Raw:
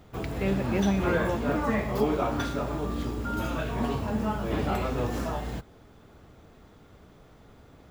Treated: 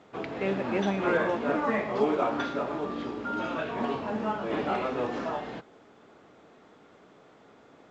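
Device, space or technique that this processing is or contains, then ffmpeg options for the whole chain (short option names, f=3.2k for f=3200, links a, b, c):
telephone: -af "highpass=270,lowpass=3.4k,volume=1.5dB" -ar 16000 -c:a pcm_alaw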